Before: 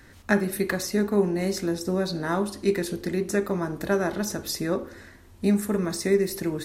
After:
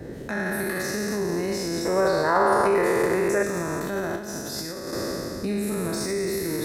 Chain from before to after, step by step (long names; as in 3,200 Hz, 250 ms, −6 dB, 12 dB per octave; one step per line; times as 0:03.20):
peak hold with a decay on every bin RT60 2.68 s
noise in a band 36–440 Hz −34 dBFS
low-shelf EQ 79 Hz −5.5 dB
brickwall limiter −17.5 dBFS, peak gain reduction 11.5 dB
0:01.85–0:03.43: graphic EQ with 10 bands 250 Hz −5 dB, 500 Hz +10 dB, 1,000 Hz +11 dB, 2,000 Hz +6 dB, 4,000 Hz −7 dB
0:04.16–0:04.93: compressor whose output falls as the input rises −30 dBFS, ratio −0.5
level −1.5 dB